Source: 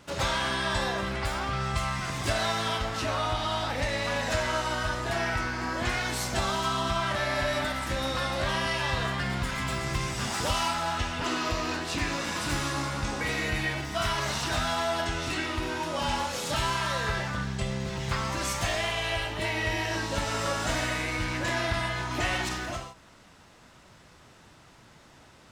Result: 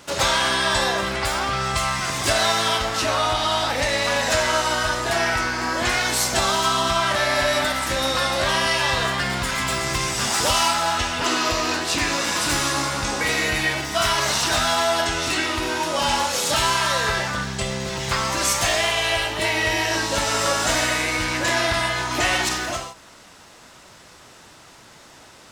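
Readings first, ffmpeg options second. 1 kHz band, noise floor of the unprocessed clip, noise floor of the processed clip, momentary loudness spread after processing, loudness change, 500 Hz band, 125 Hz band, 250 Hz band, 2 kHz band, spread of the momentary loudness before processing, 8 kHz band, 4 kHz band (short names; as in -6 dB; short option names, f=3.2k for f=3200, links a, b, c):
+8.0 dB, -55 dBFS, -47 dBFS, 4 LU, +8.5 dB, +7.5 dB, +1.5 dB, +4.5 dB, +8.5 dB, 3 LU, +12.5 dB, +10.0 dB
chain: -af "bass=f=250:g=-7,treble=f=4k:g=5,volume=8dB"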